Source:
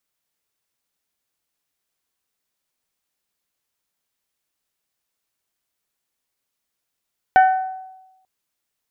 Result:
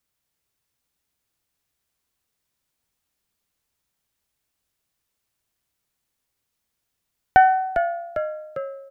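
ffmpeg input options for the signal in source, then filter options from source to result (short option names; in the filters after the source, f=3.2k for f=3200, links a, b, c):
-f lavfi -i "aevalsrc='0.447*pow(10,-3*t/1.01)*sin(2*PI*754*t)+0.168*pow(10,-3*t/0.622)*sin(2*PI*1508*t)+0.0631*pow(10,-3*t/0.547)*sin(2*PI*1809.6*t)+0.0237*pow(10,-3*t/0.468)*sin(2*PI*2262*t)+0.00891*pow(10,-3*t/0.383)*sin(2*PI*3016*t)':d=0.89:s=44100"
-filter_complex "[0:a]equalizer=f=62:t=o:w=2.9:g=10.5,asplit=2[a][b];[b]asplit=8[c][d][e][f][g][h][i][j];[c]adelay=401,afreqshift=-69,volume=-8.5dB[k];[d]adelay=802,afreqshift=-138,volume=-12.5dB[l];[e]adelay=1203,afreqshift=-207,volume=-16.5dB[m];[f]adelay=1604,afreqshift=-276,volume=-20.5dB[n];[g]adelay=2005,afreqshift=-345,volume=-24.6dB[o];[h]adelay=2406,afreqshift=-414,volume=-28.6dB[p];[i]adelay=2807,afreqshift=-483,volume=-32.6dB[q];[j]adelay=3208,afreqshift=-552,volume=-36.6dB[r];[k][l][m][n][o][p][q][r]amix=inputs=8:normalize=0[s];[a][s]amix=inputs=2:normalize=0"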